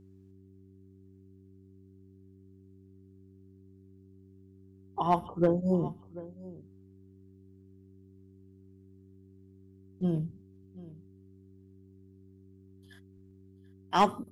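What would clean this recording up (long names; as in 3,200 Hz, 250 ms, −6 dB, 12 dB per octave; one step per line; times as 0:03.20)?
clipped peaks rebuilt −15 dBFS
hum removal 95.8 Hz, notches 4
echo removal 737 ms −18.5 dB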